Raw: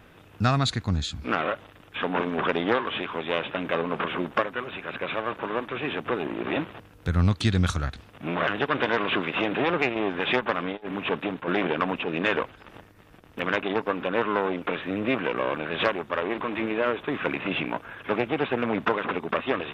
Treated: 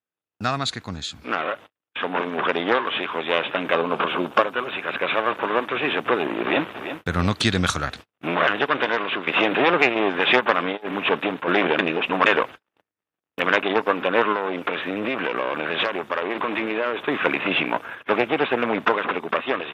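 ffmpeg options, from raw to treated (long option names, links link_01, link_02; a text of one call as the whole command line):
ffmpeg -i in.wav -filter_complex "[0:a]asettb=1/sr,asplit=3[link_01][link_02][link_03];[link_01]atrim=end=3.754[link_04];[link_02]atrim=start=3.75:end=4.66,asetpts=PTS-STARTPTS,afade=type=in:duration=0.004:curve=qsin,afade=type=out:start_time=0.906:duration=0.004:curve=qsin,equalizer=frequency=1900:width=3.9:gain=-8[link_05];[link_03]atrim=start=4.656[link_06];[link_04][link_05]acrossfade=duration=0.004:curve1=hsin:curve2=qsin[link_07];[link_07][link_06]acrossfade=duration=0.004:curve1=qsin:curve2=hsin,asplit=2[link_08][link_09];[link_09]afade=type=in:start_time=6.41:duration=0.01,afade=type=out:start_time=7.08:duration=0.01,aecho=0:1:340|680|1020|1360|1700:0.316228|0.142302|0.0640361|0.0288163|0.0129673[link_10];[link_08][link_10]amix=inputs=2:normalize=0,asettb=1/sr,asplit=3[link_11][link_12][link_13];[link_11]atrim=end=14.324[link_14];[link_12]atrim=start=14.32:end=17.08,asetpts=PTS-STARTPTS,afade=type=in:duration=0.004:curve=qsin,afade=type=out:start_time=2.756:duration=0.004:curve=qsin,acompressor=threshold=-25dB:ratio=6:attack=3.2:release=140:knee=1:detection=peak[link_15];[link_13]atrim=start=17.076[link_16];[link_14][link_15]acrossfade=duration=0.004:curve1=hsin:curve2=qsin[link_17];[link_17][link_16]acrossfade=duration=0.004:curve1=qsin:curve2=hsin,asplit=4[link_18][link_19][link_20][link_21];[link_18]atrim=end=9.27,asetpts=PTS-STARTPTS,afade=type=out:start_time=8.25:duration=1.02:silence=0.334965[link_22];[link_19]atrim=start=9.27:end=11.792,asetpts=PTS-STARTPTS,afade=type=in:duration=0.004:curve=hsin:silence=0.334965[link_23];[link_20]atrim=start=11.788:end=12.262,asetpts=PTS-STARTPTS,areverse[link_24];[link_21]atrim=start=12.258[link_25];[link_22][link_23]concat=n=2:v=0:a=1[link_26];[link_26][link_24]acrossfade=duration=0.004:curve1=hsin:curve2=hsin[link_27];[link_27][link_25]acrossfade=duration=0.004:curve1=hsin:curve2=hsin,agate=range=-41dB:threshold=-40dB:ratio=16:detection=peak,highpass=frequency=380:poles=1,dynaudnorm=framelen=270:gausssize=21:maxgain=8dB,volume=1.5dB" out.wav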